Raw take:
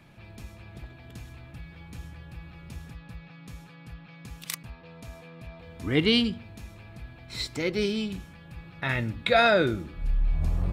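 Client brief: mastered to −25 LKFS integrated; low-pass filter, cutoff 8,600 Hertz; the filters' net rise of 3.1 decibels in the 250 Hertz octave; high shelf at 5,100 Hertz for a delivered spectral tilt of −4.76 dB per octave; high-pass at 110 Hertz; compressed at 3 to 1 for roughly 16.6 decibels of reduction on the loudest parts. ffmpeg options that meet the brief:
ffmpeg -i in.wav -af "highpass=110,lowpass=8600,equalizer=frequency=250:width_type=o:gain=4,highshelf=frequency=5100:gain=-8,acompressor=threshold=-40dB:ratio=3,volume=18dB" out.wav

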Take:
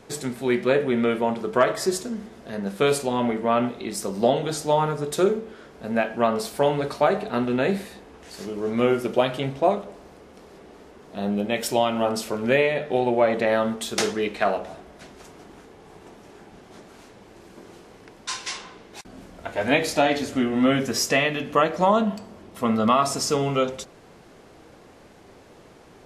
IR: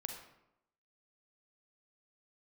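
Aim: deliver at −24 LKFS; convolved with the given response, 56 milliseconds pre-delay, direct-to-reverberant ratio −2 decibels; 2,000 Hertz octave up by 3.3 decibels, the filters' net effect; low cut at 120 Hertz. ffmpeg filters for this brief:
-filter_complex "[0:a]highpass=120,equalizer=frequency=2000:width_type=o:gain=4,asplit=2[link_01][link_02];[1:a]atrim=start_sample=2205,adelay=56[link_03];[link_02][link_03]afir=irnorm=-1:irlink=0,volume=3.5dB[link_04];[link_01][link_04]amix=inputs=2:normalize=0,volume=-5dB"

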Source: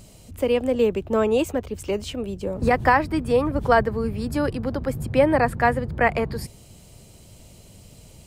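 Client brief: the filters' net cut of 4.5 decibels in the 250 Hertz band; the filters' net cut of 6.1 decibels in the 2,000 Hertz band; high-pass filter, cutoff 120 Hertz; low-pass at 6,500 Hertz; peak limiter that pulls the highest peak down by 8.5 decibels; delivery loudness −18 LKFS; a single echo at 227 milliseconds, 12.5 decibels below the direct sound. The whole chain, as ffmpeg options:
ffmpeg -i in.wav -af "highpass=120,lowpass=6500,equalizer=frequency=250:width_type=o:gain=-5,equalizer=frequency=2000:width_type=o:gain=-7.5,alimiter=limit=-16dB:level=0:latency=1,aecho=1:1:227:0.237,volume=9dB" out.wav

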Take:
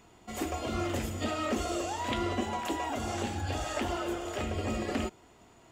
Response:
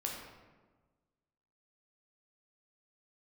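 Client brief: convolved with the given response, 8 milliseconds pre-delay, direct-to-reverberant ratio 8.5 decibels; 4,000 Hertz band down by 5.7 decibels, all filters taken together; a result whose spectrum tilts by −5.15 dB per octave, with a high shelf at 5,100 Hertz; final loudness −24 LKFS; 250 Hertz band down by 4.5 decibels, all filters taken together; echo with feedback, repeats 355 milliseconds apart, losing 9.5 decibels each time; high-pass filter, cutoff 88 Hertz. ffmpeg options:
-filter_complex "[0:a]highpass=88,equalizer=frequency=250:width_type=o:gain=-6,equalizer=frequency=4000:width_type=o:gain=-5,highshelf=frequency=5100:gain=-7.5,aecho=1:1:355|710|1065|1420:0.335|0.111|0.0365|0.012,asplit=2[link_01][link_02];[1:a]atrim=start_sample=2205,adelay=8[link_03];[link_02][link_03]afir=irnorm=-1:irlink=0,volume=-10dB[link_04];[link_01][link_04]amix=inputs=2:normalize=0,volume=11dB"

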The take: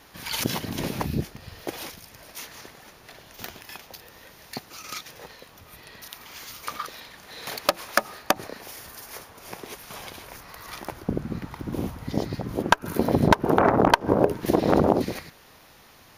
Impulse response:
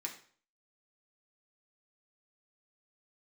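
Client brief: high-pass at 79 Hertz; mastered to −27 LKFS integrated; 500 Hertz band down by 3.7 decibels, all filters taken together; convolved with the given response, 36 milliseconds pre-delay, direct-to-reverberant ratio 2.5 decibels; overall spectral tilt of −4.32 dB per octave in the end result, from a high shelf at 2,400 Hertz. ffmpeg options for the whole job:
-filter_complex "[0:a]highpass=79,equalizer=frequency=500:width_type=o:gain=-5,highshelf=frequency=2400:gain=3,asplit=2[link_01][link_02];[1:a]atrim=start_sample=2205,adelay=36[link_03];[link_02][link_03]afir=irnorm=-1:irlink=0,volume=-2dB[link_04];[link_01][link_04]amix=inputs=2:normalize=0,volume=-0.5dB"

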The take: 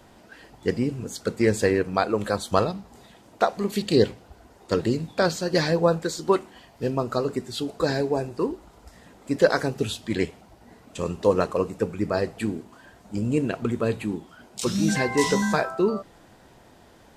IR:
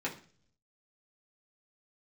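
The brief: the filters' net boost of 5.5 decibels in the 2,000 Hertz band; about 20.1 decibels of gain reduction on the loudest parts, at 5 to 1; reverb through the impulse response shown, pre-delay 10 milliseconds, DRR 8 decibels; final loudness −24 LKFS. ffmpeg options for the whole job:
-filter_complex "[0:a]equalizer=frequency=2000:width_type=o:gain=7,acompressor=threshold=-36dB:ratio=5,asplit=2[link_01][link_02];[1:a]atrim=start_sample=2205,adelay=10[link_03];[link_02][link_03]afir=irnorm=-1:irlink=0,volume=-12.5dB[link_04];[link_01][link_04]amix=inputs=2:normalize=0,volume=14.5dB"

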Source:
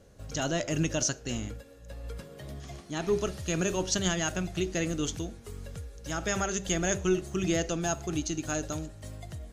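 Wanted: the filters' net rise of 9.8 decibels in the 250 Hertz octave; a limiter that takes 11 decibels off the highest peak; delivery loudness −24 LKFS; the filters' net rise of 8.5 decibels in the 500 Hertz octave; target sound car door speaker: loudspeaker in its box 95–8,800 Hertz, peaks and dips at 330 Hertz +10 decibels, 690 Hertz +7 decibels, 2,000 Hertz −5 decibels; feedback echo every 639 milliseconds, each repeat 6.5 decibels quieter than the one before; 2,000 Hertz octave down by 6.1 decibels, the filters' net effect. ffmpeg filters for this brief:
ffmpeg -i in.wav -af "equalizer=frequency=250:width_type=o:gain=3.5,equalizer=frequency=500:width_type=o:gain=4,equalizer=frequency=2000:width_type=o:gain=-7,alimiter=limit=-24dB:level=0:latency=1,highpass=95,equalizer=frequency=330:width_type=q:width=4:gain=10,equalizer=frequency=690:width_type=q:width=4:gain=7,equalizer=frequency=2000:width_type=q:width=4:gain=-5,lowpass=frequency=8800:width=0.5412,lowpass=frequency=8800:width=1.3066,aecho=1:1:639|1278|1917|2556|3195|3834:0.473|0.222|0.105|0.0491|0.0231|0.0109,volume=5.5dB" out.wav

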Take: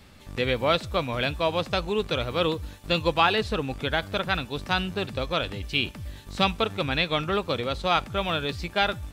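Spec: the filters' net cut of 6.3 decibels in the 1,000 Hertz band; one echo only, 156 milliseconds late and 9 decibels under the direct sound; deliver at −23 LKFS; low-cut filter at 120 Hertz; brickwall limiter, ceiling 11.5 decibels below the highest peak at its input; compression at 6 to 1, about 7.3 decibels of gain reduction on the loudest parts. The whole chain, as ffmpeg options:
ffmpeg -i in.wav -af "highpass=120,equalizer=frequency=1000:width_type=o:gain=-9,acompressor=threshold=-28dB:ratio=6,alimiter=level_in=2.5dB:limit=-24dB:level=0:latency=1,volume=-2.5dB,aecho=1:1:156:0.355,volume=14dB" out.wav

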